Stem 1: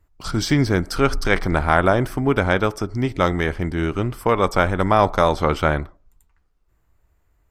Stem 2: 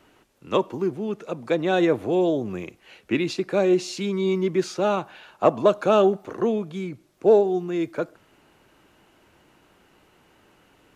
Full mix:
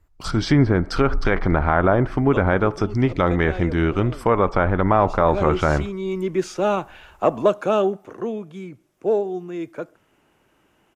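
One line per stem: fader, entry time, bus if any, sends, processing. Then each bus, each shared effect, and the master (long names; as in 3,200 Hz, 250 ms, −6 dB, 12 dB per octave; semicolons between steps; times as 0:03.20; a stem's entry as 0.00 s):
+0.5 dB, 0.00 s, no send, treble cut that deepens with the level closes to 1,700 Hz, closed at −14.5 dBFS
0:03.30 −10.5 dB → 0:03.92 −18.5 dB → 0:04.97 −18.5 dB → 0:05.39 −6.5 dB → 0:07.45 −6.5 dB → 0:08.19 −13 dB, 1.80 s, no send, parametric band 4,200 Hz −7 dB 0.38 octaves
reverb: not used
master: automatic gain control gain up to 9 dB; brickwall limiter −5.5 dBFS, peak gain reduction 4.5 dB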